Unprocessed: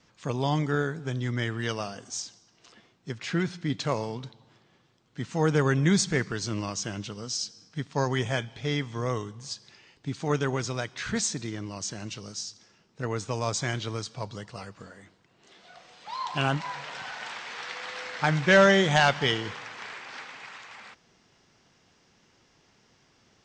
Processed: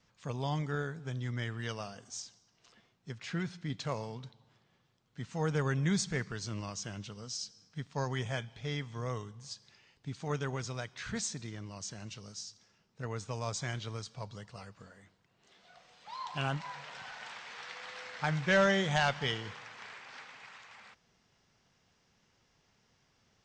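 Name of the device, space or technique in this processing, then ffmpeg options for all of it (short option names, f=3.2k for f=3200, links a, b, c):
low shelf boost with a cut just above: -af "lowshelf=f=110:g=5,equalizer=f=320:t=o:w=0.58:g=-5.5,volume=-8dB"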